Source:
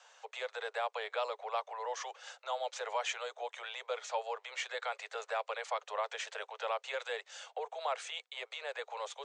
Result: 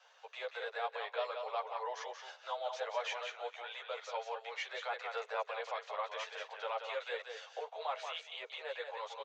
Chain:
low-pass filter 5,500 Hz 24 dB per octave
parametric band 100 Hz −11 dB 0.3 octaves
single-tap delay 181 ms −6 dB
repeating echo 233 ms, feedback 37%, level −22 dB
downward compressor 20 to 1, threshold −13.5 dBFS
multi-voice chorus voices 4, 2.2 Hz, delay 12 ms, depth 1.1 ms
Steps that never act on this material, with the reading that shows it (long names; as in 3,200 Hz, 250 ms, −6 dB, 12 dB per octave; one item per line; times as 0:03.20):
parametric band 100 Hz: nothing at its input below 360 Hz
downward compressor, threshold −13.5 dBFS: peak of its input −21.5 dBFS